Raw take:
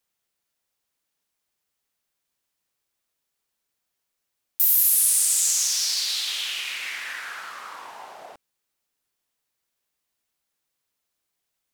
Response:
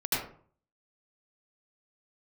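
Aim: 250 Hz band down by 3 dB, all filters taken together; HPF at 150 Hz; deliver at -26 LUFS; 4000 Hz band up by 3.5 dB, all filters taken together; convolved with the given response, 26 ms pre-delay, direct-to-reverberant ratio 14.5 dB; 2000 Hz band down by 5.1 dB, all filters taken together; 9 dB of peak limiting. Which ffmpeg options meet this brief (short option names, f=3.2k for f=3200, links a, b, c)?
-filter_complex "[0:a]highpass=150,equalizer=f=250:t=o:g=-3.5,equalizer=f=2k:t=o:g=-9,equalizer=f=4k:t=o:g=6.5,alimiter=limit=-15dB:level=0:latency=1,asplit=2[a][b];[1:a]atrim=start_sample=2205,adelay=26[c];[b][c]afir=irnorm=-1:irlink=0,volume=-23.5dB[d];[a][d]amix=inputs=2:normalize=0,volume=-3.5dB"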